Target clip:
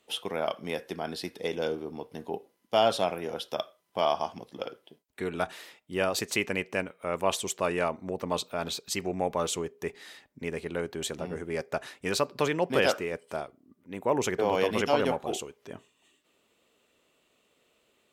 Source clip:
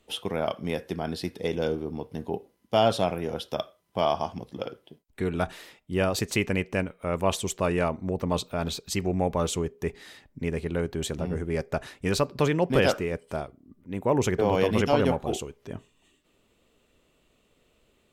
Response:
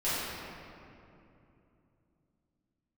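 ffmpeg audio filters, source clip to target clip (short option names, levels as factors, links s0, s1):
-af "highpass=f=430:p=1"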